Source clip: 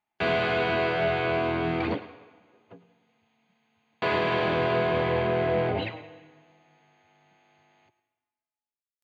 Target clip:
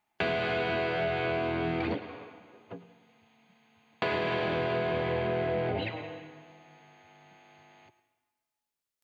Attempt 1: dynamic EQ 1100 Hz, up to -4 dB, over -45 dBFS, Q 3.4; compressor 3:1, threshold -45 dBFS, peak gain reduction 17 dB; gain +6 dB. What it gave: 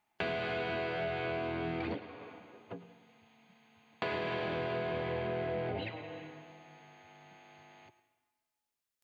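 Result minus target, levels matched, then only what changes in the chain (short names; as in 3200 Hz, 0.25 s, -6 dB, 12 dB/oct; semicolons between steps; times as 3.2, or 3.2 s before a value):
compressor: peak gain reduction +5.5 dB
change: compressor 3:1, threshold -36.5 dBFS, peak gain reduction 11.5 dB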